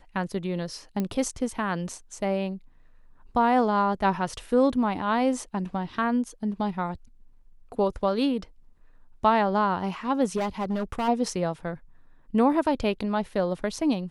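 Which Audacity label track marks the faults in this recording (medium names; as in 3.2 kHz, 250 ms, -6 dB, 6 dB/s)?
1.000000	1.000000	pop -16 dBFS
10.360000	11.090000	clipped -23.5 dBFS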